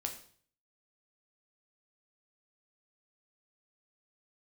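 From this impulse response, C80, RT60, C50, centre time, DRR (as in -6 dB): 13.0 dB, 0.50 s, 9.5 dB, 15 ms, 3.0 dB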